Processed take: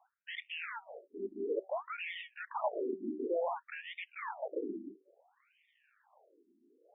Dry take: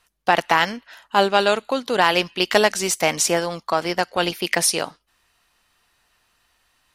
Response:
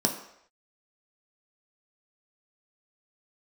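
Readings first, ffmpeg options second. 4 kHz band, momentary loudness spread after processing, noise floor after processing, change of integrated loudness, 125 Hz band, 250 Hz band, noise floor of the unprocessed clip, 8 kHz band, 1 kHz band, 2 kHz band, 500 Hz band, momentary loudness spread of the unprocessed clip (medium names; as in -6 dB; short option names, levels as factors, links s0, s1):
-26.5 dB, 9 LU, -75 dBFS, -19.5 dB, under -30 dB, -15.5 dB, -68 dBFS, under -40 dB, -21.0 dB, -21.0 dB, -16.0 dB, 6 LU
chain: -af "acrusher=samples=34:mix=1:aa=0.000001:lfo=1:lforange=20.4:lforate=1.4,bass=f=250:g=-14,treble=f=4000:g=-8,areverse,acompressor=threshold=0.0316:ratio=4,areverse,asoftclip=type=tanh:threshold=0.0266,bandreject=f=190.6:t=h:w=4,bandreject=f=381.2:t=h:w=4,bandreject=f=571.8:t=h:w=4,bandreject=f=762.4:t=h:w=4,bandreject=f=953:t=h:w=4,afftfilt=real='re*between(b*sr/1024,270*pow(2600/270,0.5+0.5*sin(2*PI*0.57*pts/sr))/1.41,270*pow(2600/270,0.5+0.5*sin(2*PI*0.57*pts/sr))*1.41)':imag='im*between(b*sr/1024,270*pow(2600/270,0.5+0.5*sin(2*PI*0.57*pts/sr))/1.41,270*pow(2600/270,0.5+0.5*sin(2*PI*0.57*pts/sr))*1.41)':win_size=1024:overlap=0.75,volume=2.11"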